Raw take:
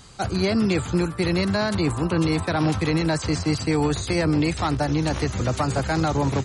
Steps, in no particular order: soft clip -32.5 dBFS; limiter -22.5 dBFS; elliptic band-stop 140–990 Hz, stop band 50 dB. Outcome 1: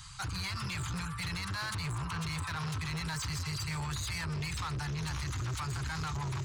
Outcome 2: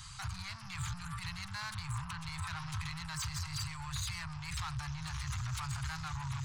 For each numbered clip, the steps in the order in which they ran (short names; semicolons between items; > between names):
elliptic band-stop > limiter > soft clip; limiter > soft clip > elliptic band-stop